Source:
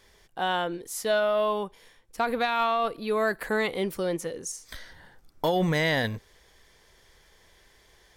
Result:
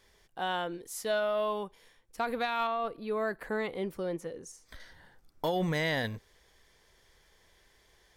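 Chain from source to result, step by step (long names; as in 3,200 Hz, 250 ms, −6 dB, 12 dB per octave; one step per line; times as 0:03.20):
0:02.67–0:04.80: high-shelf EQ 2,400 Hz −9 dB
level −5.5 dB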